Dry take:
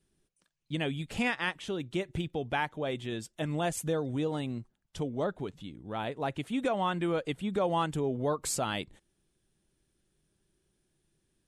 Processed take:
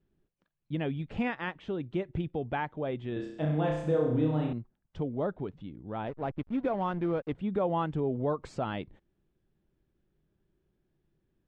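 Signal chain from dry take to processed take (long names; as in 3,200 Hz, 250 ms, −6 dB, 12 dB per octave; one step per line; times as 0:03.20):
0:06.07–0:07.35: slack as between gear wheels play −35 dBFS
head-to-tape spacing loss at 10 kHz 37 dB
0:03.13–0:04.53: flutter between parallel walls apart 5.6 metres, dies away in 0.75 s
level +2 dB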